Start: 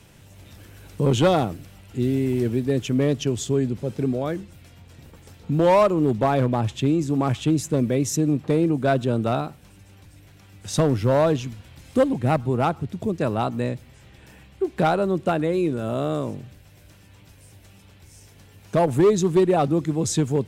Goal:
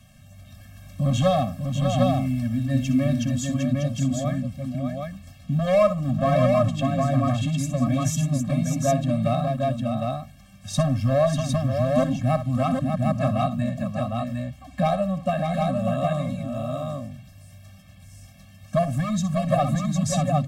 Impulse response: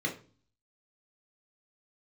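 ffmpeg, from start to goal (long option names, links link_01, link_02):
-filter_complex "[0:a]asplit=2[link_01][link_02];[link_02]aecho=0:1:62|593|756:0.251|0.501|0.708[link_03];[link_01][link_03]amix=inputs=2:normalize=0,afftfilt=real='re*eq(mod(floor(b*sr/1024/260),2),0)':imag='im*eq(mod(floor(b*sr/1024/260),2),0)':win_size=1024:overlap=0.75"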